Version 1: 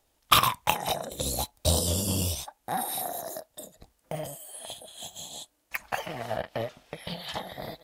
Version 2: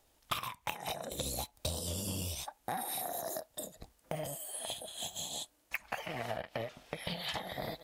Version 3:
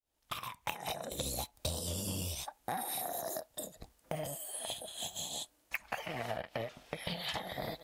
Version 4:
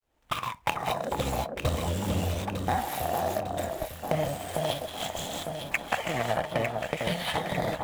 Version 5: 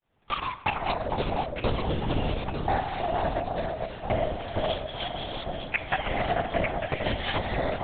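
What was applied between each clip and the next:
dynamic equaliser 2,300 Hz, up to +5 dB, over −49 dBFS, Q 2.2; downward compressor 12 to 1, threshold −35 dBFS, peak gain reduction 22.5 dB; level +1 dB
fade in at the beginning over 0.60 s
running median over 9 samples; in parallel at 0 dB: speech leveller 2 s; on the sum: delay that swaps between a low-pass and a high-pass 451 ms, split 1,400 Hz, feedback 71%, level −4 dB; level +4 dB
convolution reverb RT60 1.1 s, pre-delay 32 ms, DRR 12.5 dB; linear-prediction vocoder at 8 kHz whisper; level +1.5 dB

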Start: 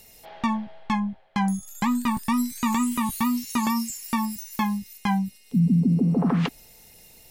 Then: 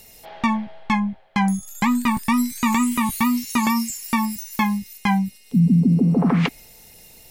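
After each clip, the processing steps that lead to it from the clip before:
dynamic equaliser 2,200 Hz, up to +7 dB, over −51 dBFS, Q 4.1
level +4 dB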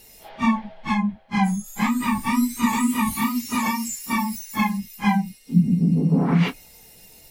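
random phases in long frames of 100 ms
level −1.5 dB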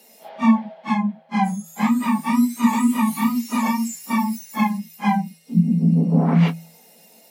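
Chebyshev high-pass with heavy ripple 160 Hz, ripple 9 dB
level +6 dB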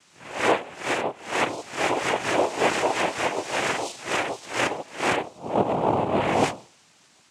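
peak hold with a rise ahead of every peak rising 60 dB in 0.46 s
full-wave rectification
cochlear-implant simulation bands 4

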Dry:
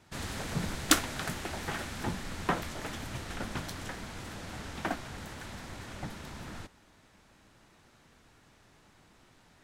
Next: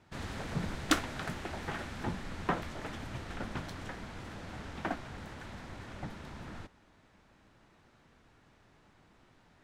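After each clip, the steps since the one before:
low-pass filter 2,800 Hz 6 dB per octave
level −1.5 dB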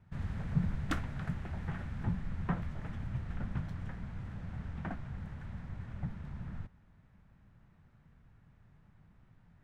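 drawn EQ curve 170 Hz 0 dB, 310 Hz −16 dB, 1,800 Hz −13 dB, 4,300 Hz −22 dB
level +6 dB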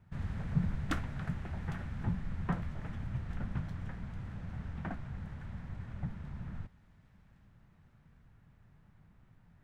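delay with a high-pass on its return 806 ms, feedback 57%, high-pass 2,900 Hz, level −14 dB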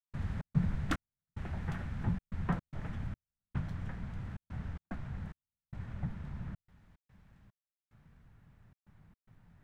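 gate pattern ".xx.xxx...xxxxxx" 110 BPM −60 dB
level +1 dB

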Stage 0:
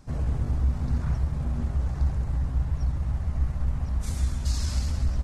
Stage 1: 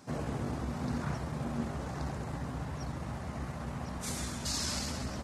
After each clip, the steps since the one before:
high-pass filter 220 Hz 12 dB per octave
level +3.5 dB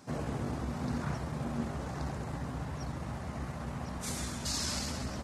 no processing that can be heard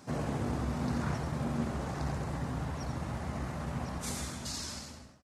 fade-out on the ending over 1.41 s
single-tap delay 89 ms −8.5 dB
level +1.5 dB

